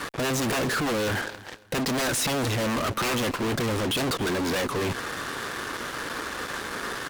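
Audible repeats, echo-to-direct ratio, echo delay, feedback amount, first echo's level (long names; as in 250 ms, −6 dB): 2, −18.0 dB, 276 ms, 26%, −18.5 dB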